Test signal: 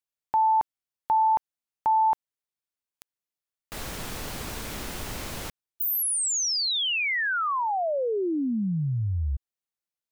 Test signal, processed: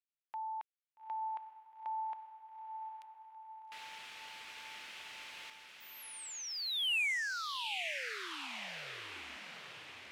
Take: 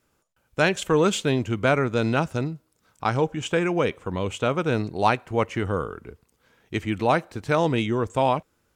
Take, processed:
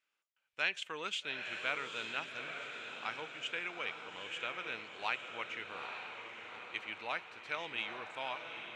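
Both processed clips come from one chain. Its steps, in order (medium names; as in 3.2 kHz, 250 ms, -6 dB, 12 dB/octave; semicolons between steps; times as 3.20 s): band-pass filter 2.6 kHz, Q 1.8; echo that smears into a reverb 856 ms, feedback 57%, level -6 dB; trim -5.5 dB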